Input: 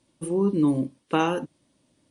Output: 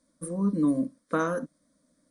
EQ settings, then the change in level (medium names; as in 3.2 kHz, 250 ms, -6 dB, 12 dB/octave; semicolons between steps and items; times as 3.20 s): static phaser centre 560 Hz, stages 8; 0.0 dB